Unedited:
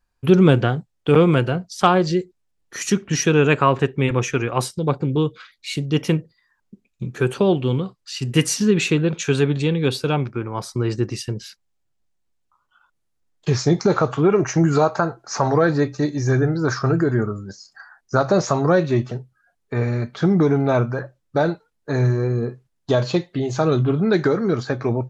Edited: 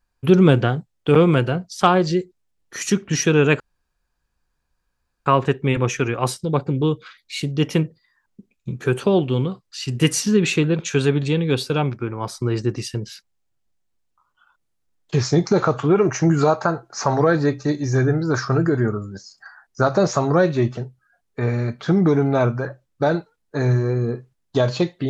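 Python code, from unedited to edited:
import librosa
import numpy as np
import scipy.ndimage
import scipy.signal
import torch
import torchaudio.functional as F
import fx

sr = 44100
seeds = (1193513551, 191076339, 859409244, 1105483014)

y = fx.edit(x, sr, fx.insert_room_tone(at_s=3.6, length_s=1.66), tone=tone)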